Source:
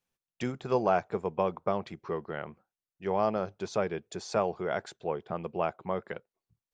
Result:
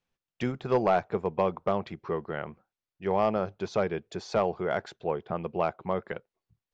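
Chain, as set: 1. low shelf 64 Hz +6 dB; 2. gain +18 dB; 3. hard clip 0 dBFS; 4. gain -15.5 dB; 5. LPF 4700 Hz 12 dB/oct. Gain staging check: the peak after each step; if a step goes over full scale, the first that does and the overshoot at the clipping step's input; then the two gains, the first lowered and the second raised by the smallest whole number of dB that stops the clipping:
-12.5, +5.5, 0.0, -15.5, -15.0 dBFS; step 2, 5.5 dB; step 2 +12 dB, step 4 -9.5 dB

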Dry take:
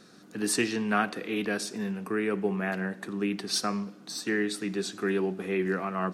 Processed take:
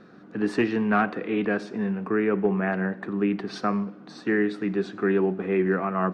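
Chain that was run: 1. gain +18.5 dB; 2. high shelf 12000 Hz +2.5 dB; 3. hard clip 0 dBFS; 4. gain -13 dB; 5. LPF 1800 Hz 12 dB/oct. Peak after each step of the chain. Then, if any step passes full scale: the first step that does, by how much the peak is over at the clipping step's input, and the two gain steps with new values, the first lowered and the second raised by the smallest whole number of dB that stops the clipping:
+6.5, +6.5, 0.0, -13.0, -12.5 dBFS; step 1, 6.5 dB; step 1 +11.5 dB, step 4 -6 dB

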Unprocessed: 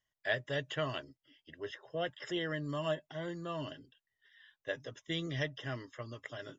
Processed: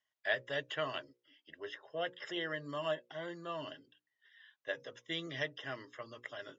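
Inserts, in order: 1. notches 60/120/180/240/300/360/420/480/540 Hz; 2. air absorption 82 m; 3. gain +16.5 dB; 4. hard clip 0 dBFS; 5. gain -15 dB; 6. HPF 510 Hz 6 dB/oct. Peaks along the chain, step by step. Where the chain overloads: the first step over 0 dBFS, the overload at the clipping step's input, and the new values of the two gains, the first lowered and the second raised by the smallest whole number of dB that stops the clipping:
-18.5, -19.0, -2.5, -2.5, -17.5, -18.5 dBFS; no overload

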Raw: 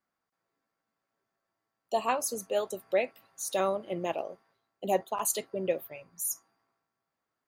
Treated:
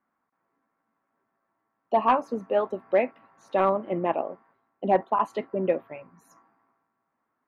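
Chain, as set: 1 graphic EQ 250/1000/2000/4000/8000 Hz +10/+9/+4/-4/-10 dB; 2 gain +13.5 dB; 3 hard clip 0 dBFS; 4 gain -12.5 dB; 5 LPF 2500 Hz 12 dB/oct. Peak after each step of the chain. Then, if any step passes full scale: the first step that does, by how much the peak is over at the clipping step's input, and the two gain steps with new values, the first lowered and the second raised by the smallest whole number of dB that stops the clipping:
-7.5, +6.0, 0.0, -12.5, -12.0 dBFS; step 2, 6.0 dB; step 2 +7.5 dB, step 4 -6.5 dB

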